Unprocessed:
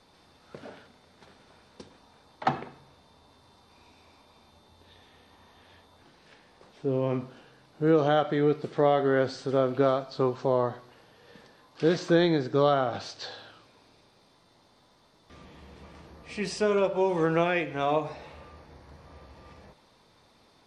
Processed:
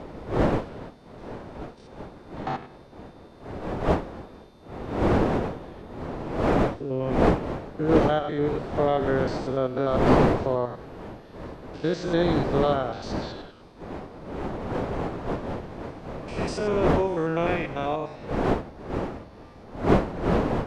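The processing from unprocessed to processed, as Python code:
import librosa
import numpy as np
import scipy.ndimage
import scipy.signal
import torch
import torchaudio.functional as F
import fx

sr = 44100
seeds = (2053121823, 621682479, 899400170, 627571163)

y = fx.spec_steps(x, sr, hold_ms=100)
y = fx.dmg_wind(y, sr, seeds[0], corner_hz=530.0, level_db=-28.0)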